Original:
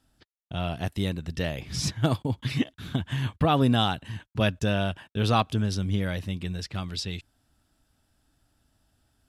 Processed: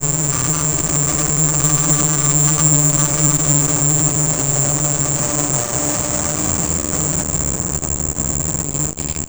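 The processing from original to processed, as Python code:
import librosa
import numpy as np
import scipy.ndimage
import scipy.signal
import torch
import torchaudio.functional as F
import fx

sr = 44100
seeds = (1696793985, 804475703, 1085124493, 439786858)

p1 = fx.spec_delay(x, sr, highs='early', ms=626)
p2 = fx.low_shelf(p1, sr, hz=380.0, db=7.5)
p3 = fx.paulstretch(p2, sr, seeds[0], factor=10.0, window_s=0.5, from_s=3.22)
p4 = fx.chopper(p3, sr, hz=3.8, depth_pct=60, duty_pct=60)
p5 = fx.octave_resonator(p4, sr, note='D', decay_s=0.43)
p6 = fx.fuzz(p5, sr, gain_db=62.0, gate_db=-56.0)
p7 = p5 + (p6 * librosa.db_to_amplitude(-11.0))
p8 = fx.granulator(p7, sr, seeds[1], grain_ms=100.0, per_s=20.0, spray_ms=100.0, spread_st=0)
p9 = p8 + fx.echo_diffused(p8, sr, ms=1099, feedback_pct=45, wet_db=-16.0, dry=0)
p10 = (np.kron(scipy.signal.resample_poly(p9, 1, 6), np.eye(6)[0]) * 6)[:len(p9)]
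p11 = fx.running_max(p10, sr, window=3)
y = p11 * librosa.db_to_amplitude(-1.0)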